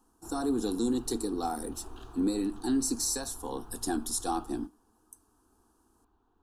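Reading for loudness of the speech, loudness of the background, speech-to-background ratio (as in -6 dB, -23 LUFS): -32.0 LUFS, -51.0 LUFS, 19.0 dB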